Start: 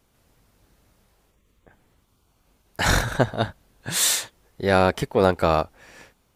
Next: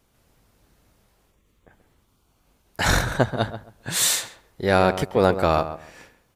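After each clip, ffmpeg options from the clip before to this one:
ffmpeg -i in.wav -filter_complex "[0:a]asplit=2[link_01][link_02];[link_02]adelay=134,lowpass=frequency=1700:poles=1,volume=-11dB,asplit=2[link_03][link_04];[link_04]adelay=134,lowpass=frequency=1700:poles=1,volume=0.22,asplit=2[link_05][link_06];[link_06]adelay=134,lowpass=frequency=1700:poles=1,volume=0.22[link_07];[link_01][link_03][link_05][link_07]amix=inputs=4:normalize=0" out.wav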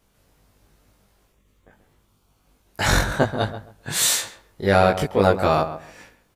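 ffmpeg -i in.wav -filter_complex "[0:a]asplit=2[link_01][link_02];[link_02]adelay=20,volume=-2dB[link_03];[link_01][link_03]amix=inputs=2:normalize=0,volume=-1dB" out.wav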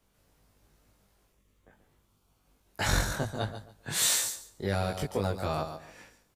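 ffmpeg -i in.wav -filter_complex "[0:a]acrossover=split=150|4200[link_01][link_02][link_03];[link_02]alimiter=limit=-14.5dB:level=0:latency=1:release=351[link_04];[link_03]aecho=1:1:142|284|426:0.596|0.0953|0.0152[link_05];[link_01][link_04][link_05]amix=inputs=3:normalize=0,volume=-6.5dB" out.wav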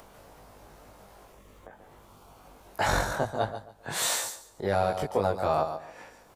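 ffmpeg -i in.wav -af "equalizer=frequency=760:width=0.65:gain=12,acompressor=mode=upward:threshold=-35dB:ratio=2.5,volume=-3.5dB" out.wav

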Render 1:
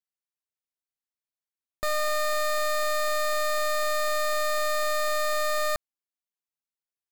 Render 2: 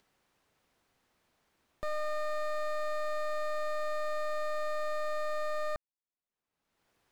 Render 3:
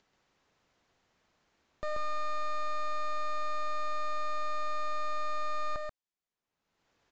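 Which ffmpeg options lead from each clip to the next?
ffmpeg -i in.wav -af "lowpass=frequency=1200:poles=1,acompressor=mode=upward:threshold=-42dB:ratio=2.5,volume=-5.5dB" out.wav
ffmpeg -i in.wav -af "aecho=1:1:134:0.631,aresample=16000,aresample=44100" out.wav

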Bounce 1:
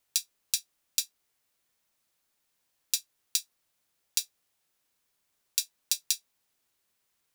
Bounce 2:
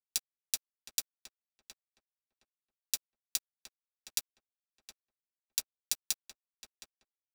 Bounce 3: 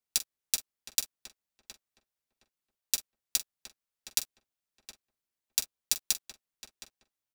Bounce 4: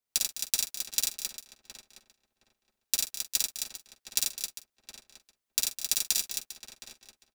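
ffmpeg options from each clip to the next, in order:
ffmpeg -i in.wav -filter_complex "[0:a]aeval=exprs='sgn(val(0))*max(abs(val(0))-0.0335,0)':channel_layout=same,asplit=2[link_01][link_02];[link_02]adelay=716,lowpass=frequency=1500:poles=1,volume=-7.5dB,asplit=2[link_03][link_04];[link_04]adelay=716,lowpass=frequency=1500:poles=1,volume=0.22,asplit=2[link_05][link_06];[link_06]adelay=716,lowpass=frequency=1500:poles=1,volume=0.22[link_07];[link_01][link_03][link_05][link_07]amix=inputs=4:normalize=0,volume=-2.5dB" out.wav
ffmpeg -i in.wav -filter_complex "[0:a]lowshelf=frequency=350:gain=3,asplit=2[link_01][link_02];[link_02]adelay=44,volume=-14dB[link_03];[link_01][link_03]amix=inputs=2:normalize=0,volume=4.5dB" out.wav
ffmpeg -i in.wav -af "aecho=1:1:53|89|207|236|266|400:0.708|0.596|0.211|0.2|0.473|0.168" out.wav

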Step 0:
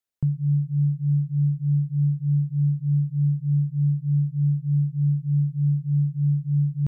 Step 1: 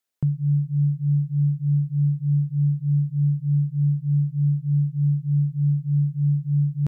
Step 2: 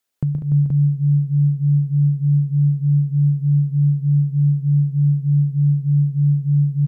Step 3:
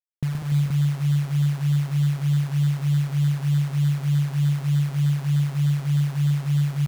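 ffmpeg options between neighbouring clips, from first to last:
ffmpeg -i in.wav -af "lowshelf=frequency=130:gain=-10.5,volume=5.5dB" out.wav
ffmpeg -i in.wav -af "acompressor=threshold=-24dB:ratio=2.5,aecho=1:1:124|158|195|293|434|477:0.501|0.141|0.316|0.355|0.211|0.562,volume=5dB" out.wav
ffmpeg -i in.wav -af "acrusher=bits=6:dc=4:mix=0:aa=0.000001,volume=-5dB" out.wav

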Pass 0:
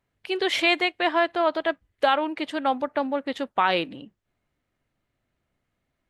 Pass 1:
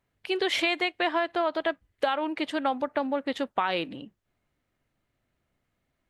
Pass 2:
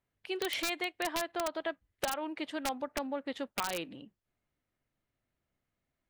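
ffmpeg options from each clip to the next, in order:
ffmpeg -i in.wav -af "acompressor=threshold=-22dB:ratio=6" out.wav
ffmpeg -i in.wav -af "aeval=exprs='(mod(6.31*val(0)+1,2)-1)/6.31':channel_layout=same,volume=-8dB" out.wav

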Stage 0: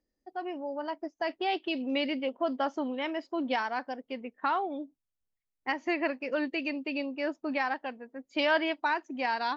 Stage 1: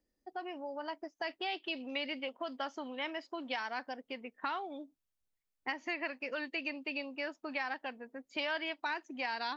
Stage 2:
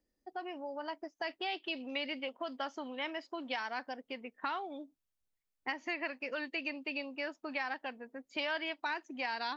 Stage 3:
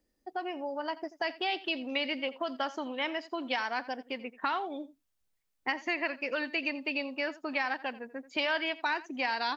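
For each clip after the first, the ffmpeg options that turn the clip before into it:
ffmpeg -i in.wav -filter_complex "[0:a]acrossover=split=750|1700[link_01][link_02][link_03];[link_01]acompressor=threshold=-45dB:ratio=4[link_04];[link_02]acompressor=threshold=-43dB:ratio=4[link_05];[link_03]acompressor=threshold=-37dB:ratio=4[link_06];[link_04][link_05][link_06]amix=inputs=3:normalize=0" out.wav
ffmpeg -i in.wav -af anull out.wav
ffmpeg -i in.wav -af "aecho=1:1:85:0.126,volume=5.5dB" out.wav

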